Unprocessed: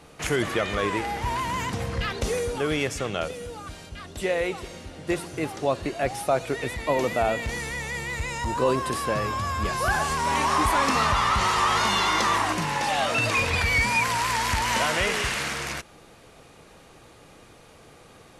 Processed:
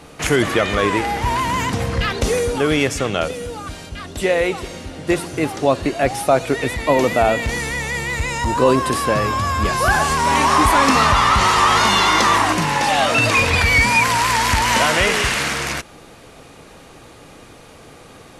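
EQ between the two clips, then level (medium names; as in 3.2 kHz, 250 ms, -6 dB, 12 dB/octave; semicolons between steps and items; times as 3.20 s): peaking EQ 270 Hz +4 dB 0.22 oct; +8.0 dB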